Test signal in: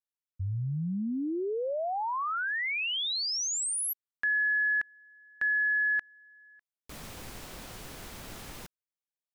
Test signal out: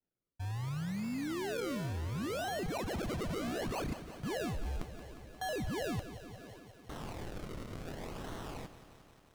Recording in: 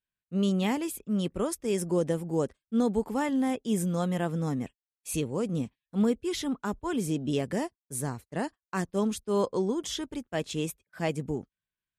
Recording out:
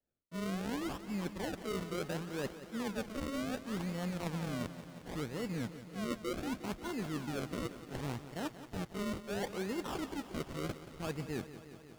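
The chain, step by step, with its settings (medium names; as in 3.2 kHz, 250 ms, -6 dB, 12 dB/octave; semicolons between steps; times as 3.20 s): modulation noise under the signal 18 dB; decimation with a swept rate 36×, swing 100% 0.69 Hz; reverse; compression 6:1, threshold -37 dBFS; reverse; treble shelf 12 kHz -6 dB; bit-crushed delay 178 ms, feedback 80%, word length 10-bit, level -13 dB; trim +1 dB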